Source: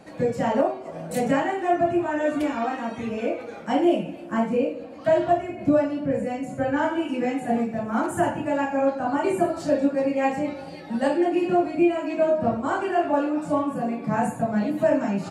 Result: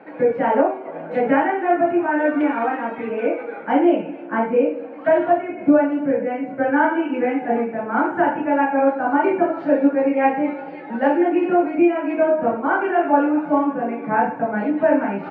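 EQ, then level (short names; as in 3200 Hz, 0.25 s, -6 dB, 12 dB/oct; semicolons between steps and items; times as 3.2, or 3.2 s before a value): speaker cabinet 220–2700 Hz, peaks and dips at 290 Hz +7 dB, 450 Hz +5 dB, 870 Hz +8 dB, 1500 Hz +9 dB, 2200 Hz +6 dB; bell 480 Hz +2.5 dB; 0.0 dB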